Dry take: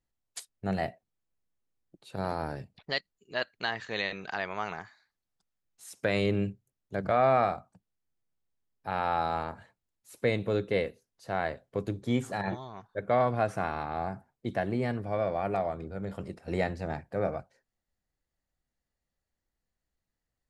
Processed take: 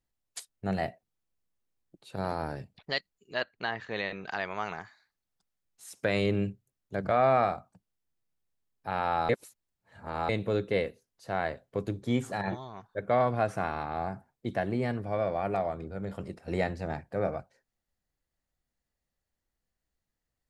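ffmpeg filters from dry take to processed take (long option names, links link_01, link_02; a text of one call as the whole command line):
ffmpeg -i in.wav -filter_complex "[0:a]asettb=1/sr,asplit=3[link_01][link_02][link_03];[link_01]atrim=end=3.424[link_04];[link_02]atrim=start=3.42:end=4.26,asetpts=PTS-STARTPTS,afade=type=in:duration=0.004:curve=qsin,afade=type=out:start_time=0.836:duration=0.004:curve=qsin,aemphasis=mode=reproduction:type=75fm[link_05];[link_03]atrim=start=4.256[link_06];[link_04][link_05]acrossfade=duration=0.004:curve1=hsin:curve2=qsin[link_07];[link_07][link_06]acrossfade=duration=0.004:curve1=qsin:curve2=hsin,asplit=3[link_08][link_09][link_10];[link_08]atrim=end=9.292[link_11];[link_09]atrim=start=9.288:end=10.292,asetpts=PTS-STARTPTS,areverse[link_12];[link_10]atrim=start=10.288[link_13];[link_11][link_12]acrossfade=duration=0.004:curve1=hsin:curve2=hsin[link_14];[link_14][link_13]acrossfade=duration=0.004:curve1=hsin:curve2=hsin" out.wav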